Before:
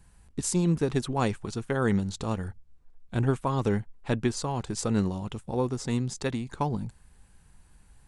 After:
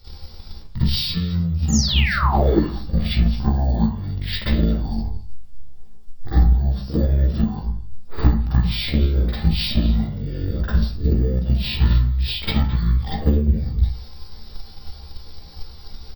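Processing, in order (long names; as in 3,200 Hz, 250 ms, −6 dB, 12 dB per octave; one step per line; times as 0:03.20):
comb filter 6.8 ms, depth 59%
wrong playback speed 15 ips tape played at 7.5 ips
bad sample-rate conversion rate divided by 2×, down filtered, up hold
bass and treble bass +5 dB, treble +11 dB
downward compressor 12 to 1, threshold −32 dBFS, peak gain reduction 20.5 dB
echo through a band-pass that steps 107 ms, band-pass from 1,200 Hz, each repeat 1.4 octaves, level −11.5 dB
sound drawn into the spectrogram fall, 0:01.68–0:02.58, 270–7,300 Hz −36 dBFS
convolution reverb RT60 0.45 s, pre-delay 42 ms, DRR −10 dB
transient designer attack +7 dB, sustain +2 dB
mains-hum notches 50/100/150/200 Hz
level +2 dB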